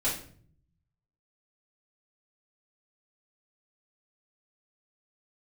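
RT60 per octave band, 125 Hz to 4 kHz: 1.3, 0.85, 0.60, 0.45, 0.45, 0.40 seconds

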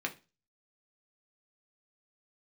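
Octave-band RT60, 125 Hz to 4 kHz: 0.40, 0.35, 0.30, 0.30, 0.30, 0.30 seconds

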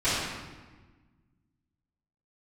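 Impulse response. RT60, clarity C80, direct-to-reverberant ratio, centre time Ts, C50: 1.3 s, 1.0 dB, −18.0 dB, 97 ms, −2.0 dB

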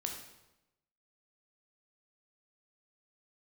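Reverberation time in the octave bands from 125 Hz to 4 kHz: 1.0, 1.0, 0.95, 0.90, 0.85, 0.80 seconds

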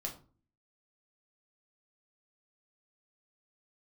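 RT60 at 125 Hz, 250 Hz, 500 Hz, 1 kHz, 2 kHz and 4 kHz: 0.65, 0.65, 0.40, 0.40, 0.30, 0.25 seconds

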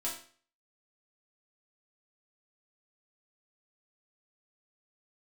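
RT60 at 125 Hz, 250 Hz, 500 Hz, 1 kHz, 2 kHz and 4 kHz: 0.45, 0.45, 0.45, 0.45, 0.45, 0.45 seconds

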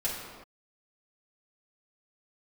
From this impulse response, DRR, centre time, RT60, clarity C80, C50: −8.5 dB, 72 ms, non-exponential decay, 3.5 dB, 1.0 dB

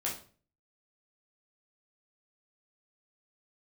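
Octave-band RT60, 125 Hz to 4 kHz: 0.60, 0.50, 0.45, 0.40, 0.35, 0.35 seconds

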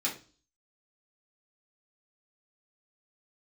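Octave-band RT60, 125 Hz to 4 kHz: 0.50, 0.50, 0.40, 0.35, 0.35, 0.40 seconds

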